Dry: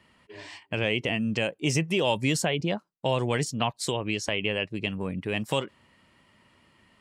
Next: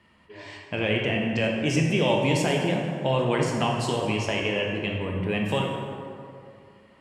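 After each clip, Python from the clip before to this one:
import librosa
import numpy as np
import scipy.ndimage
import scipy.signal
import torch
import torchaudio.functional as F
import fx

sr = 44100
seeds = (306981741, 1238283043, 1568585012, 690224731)

y = fx.high_shelf(x, sr, hz=4800.0, db=-7.5)
y = fx.rev_plate(y, sr, seeds[0], rt60_s=2.5, hf_ratio=0.5, predelay_ms=0, drr_db=-1.0)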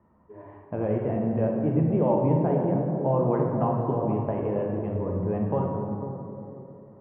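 y = scipy.signal.sosfilt(scipy.signal.butter(4, 1100.0, 'lowpass', fs=sr, output='sos'), x)
y = fx.echo_wet_lowpass(y, sr, ms=498, feedback_pct=31, hz=560.0, wet_db=-7)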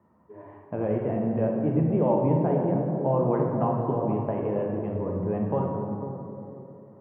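y = scipy.signal.sosfilt(scipy.signal.butter(2, 95.0, 'highpass', fs=sr, output='sos'), x)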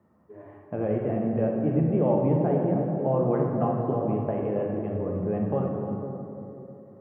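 y = fx.notch(x, sr, hz=960.0, q=6.2)
y = y + 10.0 ** (-12.5 / 20.0) * np.pad(y, (int(312 * sr / 1000.0), 0))[:len(y)]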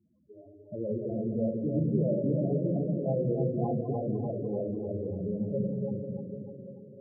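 y = fx.spec_topn(x, sr, count=8)
y = fx.echo_split(y, sr, split_hz=360.0, low_ms=175, high_ms=296, feedback_pct=52, wet_db=-5)
y = y * librosa.db_to_amplitude(-4.5)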